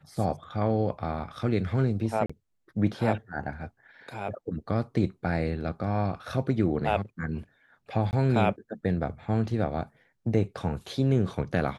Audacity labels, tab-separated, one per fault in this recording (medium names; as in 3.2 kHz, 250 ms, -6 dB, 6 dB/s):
2.260000	2.290000	dropout 35 ms
8.110000	8.130000	dropout 19 ms